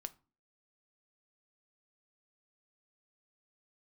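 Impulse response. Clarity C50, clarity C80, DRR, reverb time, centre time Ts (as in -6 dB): 21.0 dB, 27.0 dB, 11.0 dB, 0.35 s, 2 ms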